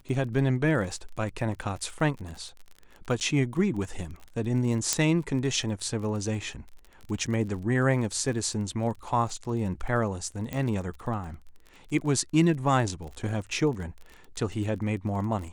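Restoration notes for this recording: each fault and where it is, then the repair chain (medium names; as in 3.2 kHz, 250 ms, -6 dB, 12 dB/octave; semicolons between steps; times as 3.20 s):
crackle 30 per s -36 dBFS
3.20–3.21 s: dropout 9.7 ms
4.93 s: pop -7 dBFS
10.53 s: pop -18 dBFS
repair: de-click; interpolate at 3.20 s, 9.7 ms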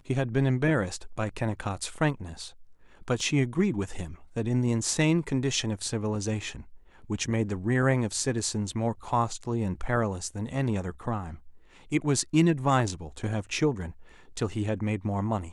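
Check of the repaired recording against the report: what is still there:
10.53 s: pop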